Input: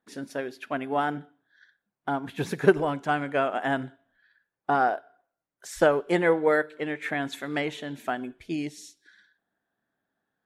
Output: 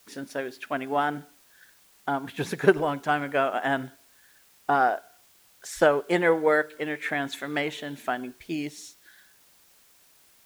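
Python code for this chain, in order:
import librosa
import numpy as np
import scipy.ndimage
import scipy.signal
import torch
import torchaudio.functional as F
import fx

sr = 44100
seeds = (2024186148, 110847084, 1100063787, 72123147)

p1 = fx.low_shelf(x, sr, hz=460.0, db=-4.0)
p2 = fx.quant_dither(p1, sr, seeds[0], bits=8, dither='triangular')
y = p1 + F.gain(torch.from_numpy(p2), -11.0).numpy()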